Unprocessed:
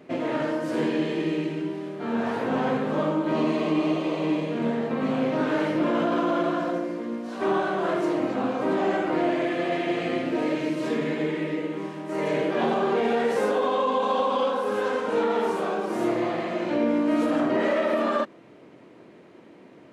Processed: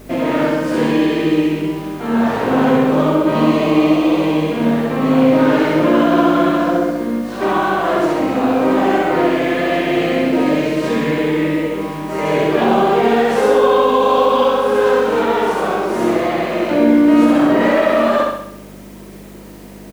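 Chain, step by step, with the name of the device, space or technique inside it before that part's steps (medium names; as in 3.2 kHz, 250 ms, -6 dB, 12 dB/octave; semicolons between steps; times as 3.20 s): video cassette with head-switching buzz (mains buzz 50 Hz, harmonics 5, -48 dBFS -2 dB/octave; white noise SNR 33 dB); feedback delay 65 ms, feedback 53%, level -3 dB; trim +8 dB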